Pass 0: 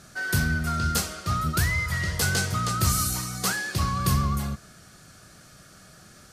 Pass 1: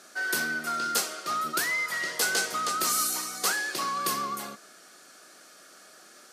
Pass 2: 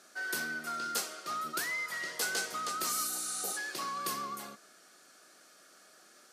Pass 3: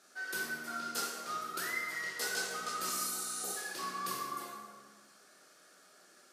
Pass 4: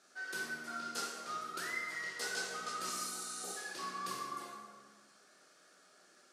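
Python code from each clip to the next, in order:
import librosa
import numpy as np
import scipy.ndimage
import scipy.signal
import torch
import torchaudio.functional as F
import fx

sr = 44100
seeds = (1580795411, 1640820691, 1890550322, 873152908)

y1 = scipy.signal.sosfilt(scipy.signal.butter(4, 300.0, 'highpass', fs=sr, output='sos'), x)
y2 = fx.spec_repair(y1, sr, seeds[0], start_s=3.14, length_s=0.41, low_hz=920.0, high_hz=11000.0, source='before')
y2 = y2 * 10.0 ** (-7.0 / 20.0)
y3 = fx.rev_plate(y2, sr, seeds[1], rt60_s=1.5, hf_ratio=0.6, predelay_ms=0, drr_db=-2.5)
y3 = y3 * 10.0 ** (-6.0 / 20.0)
y4 = scipy.signal.sosfilt(scipy.signal.butter(2, 9100.0, 'lowpass', fs=sr, output='sos'), y3)
y4 = y4 * 10.0 ** (-2.5 / 20.0)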